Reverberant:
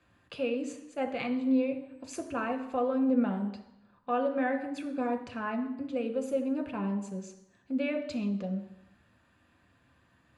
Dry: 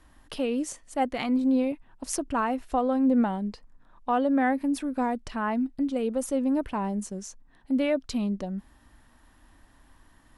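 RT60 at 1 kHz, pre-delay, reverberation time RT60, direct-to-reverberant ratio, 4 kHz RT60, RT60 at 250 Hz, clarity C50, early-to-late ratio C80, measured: 0.85 s, 3 ms, 0.85 s, 5.0 dB, 0.90 s, 0.85 s, 10.5 dB, 12.5 dB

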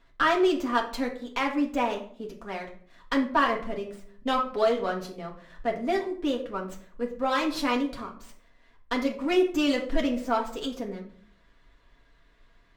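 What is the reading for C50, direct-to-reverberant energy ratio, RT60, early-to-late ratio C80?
9.5 dB, −1.0 dB, 0.55 s, 14.0 dB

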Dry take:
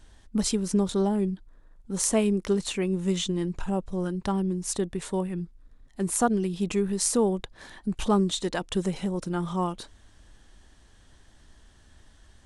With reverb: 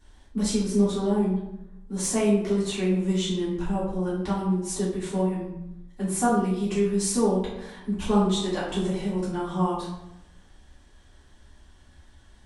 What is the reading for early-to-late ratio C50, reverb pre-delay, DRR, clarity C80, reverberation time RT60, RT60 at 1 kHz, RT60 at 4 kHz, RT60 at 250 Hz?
2.0 dB, 3 ms, −10.5 dB, 6.0 dB, 0.90 s, 0.85 s, 0.55 s, 1.0 s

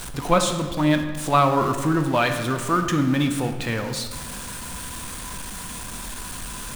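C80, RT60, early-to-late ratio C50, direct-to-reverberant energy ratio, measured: 10.0 dB, 1.6 s, 8.0 dB, 6.0 dB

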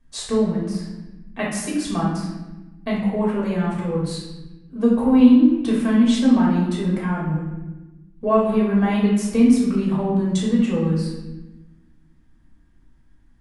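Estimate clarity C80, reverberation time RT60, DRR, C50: 5.0 dB, 1.1 s, −6.0 dB, 1.5 dB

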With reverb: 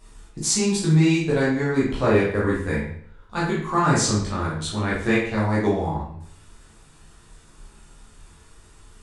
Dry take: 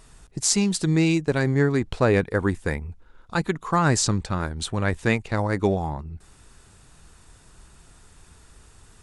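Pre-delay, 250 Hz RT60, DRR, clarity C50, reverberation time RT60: 11 ms, 0.60 s, −8.0 dB, 2.0 dB, 0.60 s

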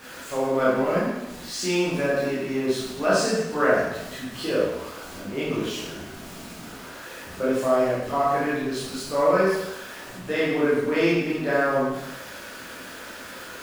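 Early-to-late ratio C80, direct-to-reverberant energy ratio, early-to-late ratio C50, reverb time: 2.5 dB, −9.0 dB, −1.0 dB, 0.95 s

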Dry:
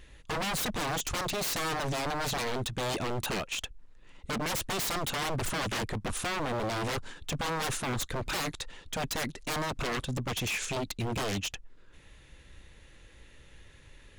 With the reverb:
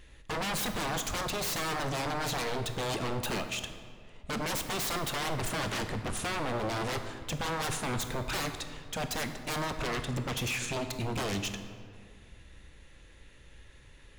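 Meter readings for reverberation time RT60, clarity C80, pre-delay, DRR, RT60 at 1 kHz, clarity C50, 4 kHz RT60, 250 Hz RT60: 2.1 s, 9.5 dB, 16 ms, 7.0 dB, 1.9 s, 8.5 dB, 1.2 s, 2.5 s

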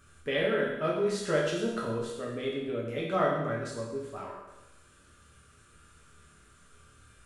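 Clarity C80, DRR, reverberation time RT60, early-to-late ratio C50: 4.5 dB, −5.0 dB, 0.95 s, 2.0 dB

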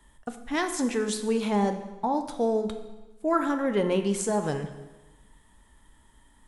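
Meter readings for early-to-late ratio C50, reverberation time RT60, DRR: 9.5 dB, 1.1 s, 7.0 dB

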